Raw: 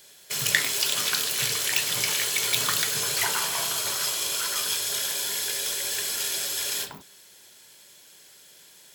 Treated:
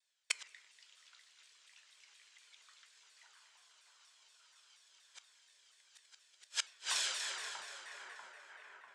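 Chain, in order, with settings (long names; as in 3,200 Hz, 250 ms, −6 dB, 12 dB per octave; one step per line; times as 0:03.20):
Butterworth low-pass 8,800 Hz 36 dB per octave
noise gate −48 dBFS, range −33 dB
high-pass filter 1,100 Hz 12 dB per octave
high-shelf EQ 5,700 Hz −6.5 dB
echo with a time of its own for lows and highs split 1,800 Hz, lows 642 ms, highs 240 ms, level −7 dB
gate with flip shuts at −22 dBFS, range −41 dB
speech leveller within 3 dB 2 s
on a send at −16 dB: convolution reverb RT60 1.2 s, pre-delay 4 ms
on the sum: pitch modulation by a square or saw wave saw down 4.2 Hz, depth 160 cents
level +3 dB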